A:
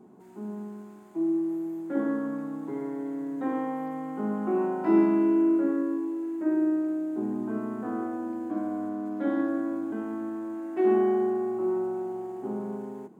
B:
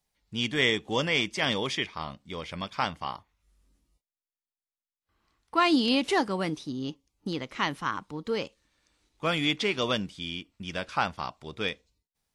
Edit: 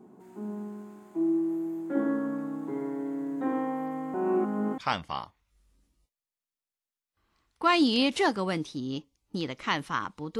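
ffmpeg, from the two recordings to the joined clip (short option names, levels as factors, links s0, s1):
-filter_complex "[0:a]apad=whole_dur=10.39,atrim=end=10.39,asplit=2[s0][s1];[s0]atrim=end=4.142[s2];[s1]atrim=start=4.138:end=4.782,asetpts=PTS-STARTPTS,areverse[s3];[1:a]atrim=start=2.698:end=8.31[s4];[s2][s3]acrossfade=d=0.004:c1=hsin:c2=hsin[s5];[s5][s4]acrossfade=d=0.004:c1=hsin:c2=hsin"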